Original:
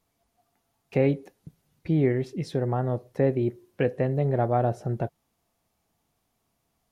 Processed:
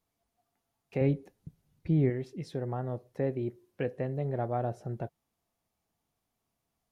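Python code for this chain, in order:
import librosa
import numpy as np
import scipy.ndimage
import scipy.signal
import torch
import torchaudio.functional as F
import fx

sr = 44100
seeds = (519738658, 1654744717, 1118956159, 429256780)

y = fx.low_shelf(x, sr, hz=200.0, db=10.5, at=(1.01, 2.1))
y = y * librosa.db_to_amplitude(-8.0)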